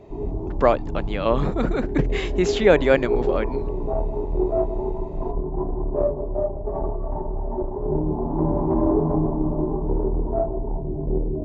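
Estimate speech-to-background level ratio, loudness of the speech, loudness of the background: 3.5 dB, −22.5 LKFS, −26.0 LKFS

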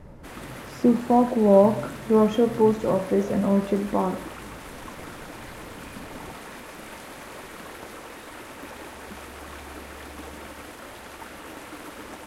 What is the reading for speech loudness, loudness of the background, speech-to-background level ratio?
−21.5 LKFS, −40.0 LKFS, 18.5 dB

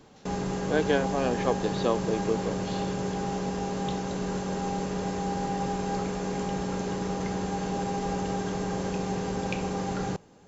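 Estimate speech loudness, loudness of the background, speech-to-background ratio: −29.5 LKFS, −31.0 LKFS, 1.5 dB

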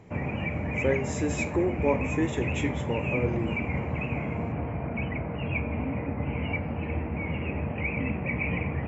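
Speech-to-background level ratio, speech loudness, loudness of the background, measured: 0.5 dB, −30.5 LKFS, −31.0 LKFS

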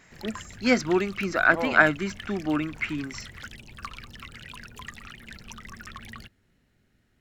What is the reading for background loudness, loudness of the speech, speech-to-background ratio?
−42.5 LKFS, −24.5 LKFS, 18.0 dB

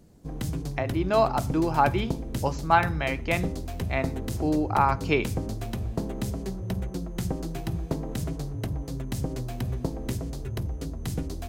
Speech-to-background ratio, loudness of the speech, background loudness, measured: 6.5 dB, −26.5 LKFS, −33.0 LKFS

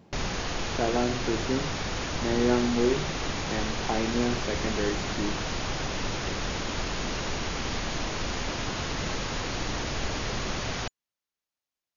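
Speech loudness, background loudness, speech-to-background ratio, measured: −30.0 LKFS, −31.5 LKFS, 1.5 dB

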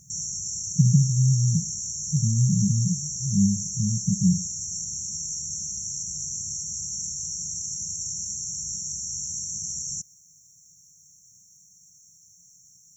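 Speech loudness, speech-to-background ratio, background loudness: −23.5 LKFS, 5.5 dB, −29.0 LKFS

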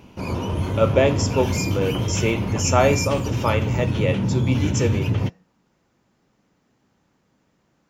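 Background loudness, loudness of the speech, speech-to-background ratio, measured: −24.0 LKFS, −23.5 LKFS, 0.5 dB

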